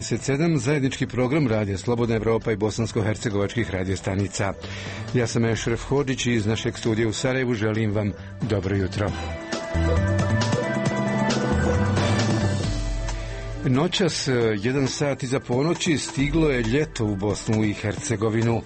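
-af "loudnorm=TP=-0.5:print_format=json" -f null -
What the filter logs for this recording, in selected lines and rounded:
"input_i" : "-23.7",
"input_tp" : "-10.8",
"input_lra" : "1.9",
"input_thresh" : "-33.7",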